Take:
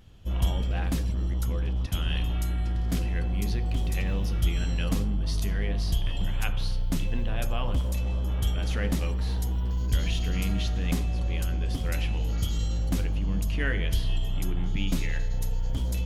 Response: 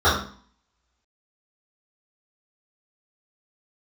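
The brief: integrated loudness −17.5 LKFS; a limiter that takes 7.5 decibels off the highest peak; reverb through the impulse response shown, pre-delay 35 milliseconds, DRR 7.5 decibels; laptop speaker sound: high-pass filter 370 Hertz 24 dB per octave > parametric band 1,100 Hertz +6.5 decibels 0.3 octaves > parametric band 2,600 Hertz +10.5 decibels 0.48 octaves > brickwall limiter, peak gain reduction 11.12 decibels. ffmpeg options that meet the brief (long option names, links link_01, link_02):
-filter_complex "[0:a]alimiter=limit=-20dB:level=0:latency=1,asplit=2[link_01][link_02];[1:a]atrim=start_sample=2205,adelay=35[link_03];[link_02][link_03]afir=irnorm=-1:irlink=0,volume=-30dB[link_04];[link_01][link_04]amix=inputs=2:normalize=0,highpass=frequency=370:width=0.5412,highpass=frequency=370:width=1.3066,equalizer=frequency=1100:width_type=o:width=0.3:gain=6.5,equalizer=frequency=2600:width_type=o:width=0.48:gain=10.5,volume=20.5dB,alimiter=limit=-6.5dB:level=0:latency=1"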